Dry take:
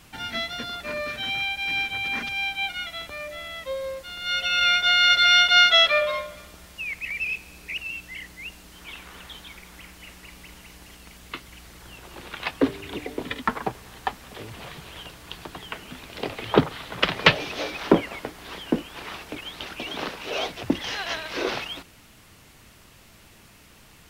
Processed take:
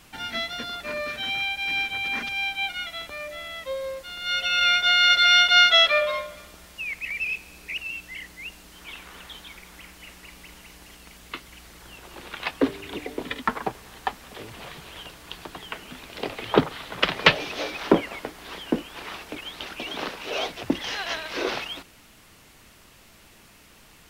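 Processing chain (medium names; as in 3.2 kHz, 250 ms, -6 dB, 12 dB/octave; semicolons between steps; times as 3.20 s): peaking EQ 100 Hz -5 dB 1.6 oct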